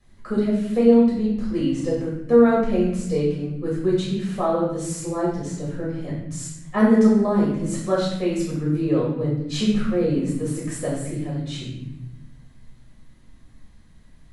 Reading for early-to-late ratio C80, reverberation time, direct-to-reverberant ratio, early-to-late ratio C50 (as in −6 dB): 5.0 dB, 0.90 s, −7.0 dB, 2.0 dB